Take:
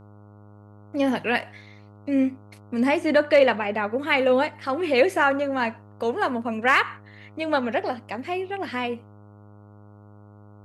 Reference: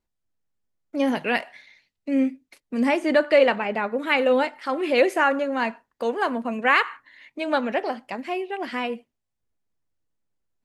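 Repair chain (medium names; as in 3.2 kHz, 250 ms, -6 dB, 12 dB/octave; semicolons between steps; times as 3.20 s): clip repair -8 dBFS; de-hum 103.1 Hz, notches 14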